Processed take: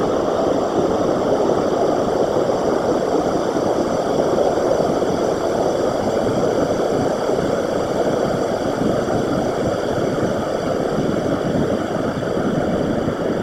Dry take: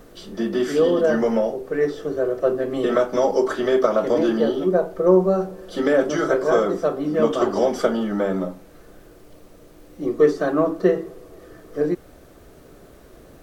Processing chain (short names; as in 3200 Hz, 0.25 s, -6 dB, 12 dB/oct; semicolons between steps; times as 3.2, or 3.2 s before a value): Paulstretch 24×, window 1.00 s, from 7.5; whisperiser; gain +2 dB